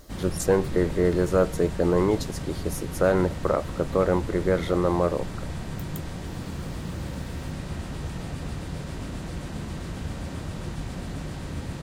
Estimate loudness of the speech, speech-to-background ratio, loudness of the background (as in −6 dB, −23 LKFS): −25.0 LKFS, 9.5 dB, −34.5 LKFS